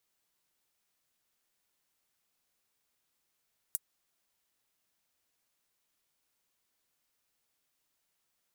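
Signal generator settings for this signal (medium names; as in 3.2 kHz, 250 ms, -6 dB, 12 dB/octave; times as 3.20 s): closed hi-hat, high-pass 8.9 kHz, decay 0.04 s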